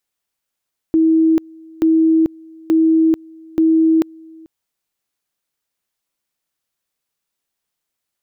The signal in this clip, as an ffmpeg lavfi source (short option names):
-f lavfi -i "aevalsrc='pow(10,(-9.5-27*gte(mod(t,0.88),0.44))/20)*sin(2*PI*322*t)':d=3.52:s=44100"